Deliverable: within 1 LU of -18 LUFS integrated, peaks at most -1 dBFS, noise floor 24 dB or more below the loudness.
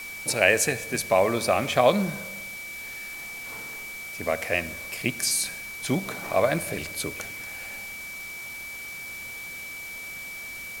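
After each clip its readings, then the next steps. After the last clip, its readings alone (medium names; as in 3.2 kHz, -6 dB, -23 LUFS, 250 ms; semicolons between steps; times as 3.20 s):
steady tone 2.3 kHz; tone level -36 dBFS; noise floor -38 dBFS; noise floor target -52 dBFS; loudness -27.5 LUFS; peak level -3.5 dBFS; loudness target -18.0 LUFS
-> band-stop 2.3 kHz, Q 30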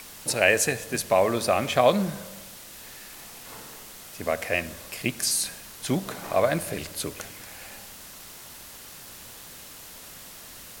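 steady tone not found; noise floor -45 dBFS; noise floor target -50 dBFS
-> noise print and reduce 6 dB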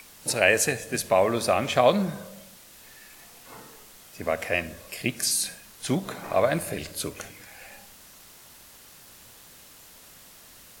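noise floor -50 dBFS; loudness -25.5 LUFS; peak level -4.0 dBFS; loudness target -18.0 LUFS
-> trim +7.5 dB; peak limiter -1 dBFS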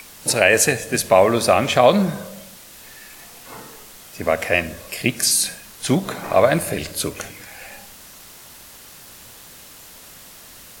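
loudness -18.5 LUFS; peak level -1.0 dBFS; noise floor -43 dBFS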